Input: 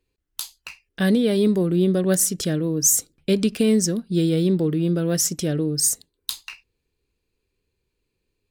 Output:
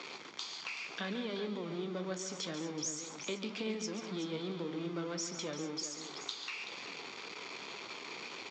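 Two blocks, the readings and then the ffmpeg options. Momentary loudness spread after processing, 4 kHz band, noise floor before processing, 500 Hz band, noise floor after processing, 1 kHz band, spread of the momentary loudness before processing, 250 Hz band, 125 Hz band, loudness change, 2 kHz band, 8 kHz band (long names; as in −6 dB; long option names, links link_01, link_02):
6 LU, −9.0 dB, −78 dBFS, −17.0 dB, −48 dBFS, −4.5 dB, 15 LU, −19.5 dB, −22.5 dB, −19.0 dB, −6.5 dB, −20.0 dB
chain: -filter_complex "[0:a]aeval=exprs='val(0)+0.5*0.0335*sgn(val(0))':channel_layout=same,highpass=frequency=170:width=0.5412,highpass=frequency=170:width=1.3066,acrossover=split=410 5700:gain=0.224 1 0.141[link_01][link_02][link_03];[link_01][link_02][link_03]amix=inputs=3:normalize=0,aecho=1:1:0.9:0.38,acompressor=threshold=-36dB:ratio=2.5,flanger=delay=8.7:depth=6.9:regen=61:speed=1.9:shape=triangular,asplit=2[link_04][link_05];[link_05]aecho=0:1:140|200|379:0.316|0.15|0.299[link_06];[link_04][link_06]amix=inputs=2:normalize=0,aresample=16000,aresample=44100"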